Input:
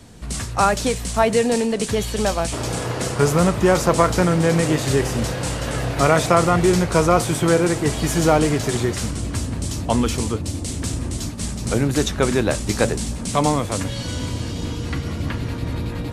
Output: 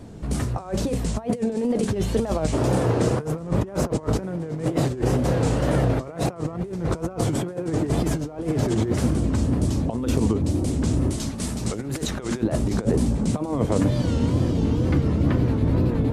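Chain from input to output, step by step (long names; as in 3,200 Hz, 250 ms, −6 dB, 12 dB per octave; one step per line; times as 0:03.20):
mains-hum notches 50/100/150/200/250 Hz
compressor whose output falls as the input rises −23 dBFS, ratio −0.5
tilt shelving filter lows +9 dB, from 0:11.10 lows +3.5 dB, from 0:12.41 lows +10 dB
tape wow and flutter 130 cents
low-shelf EQ 130 Hz −8.5 dB
level −2.5 dB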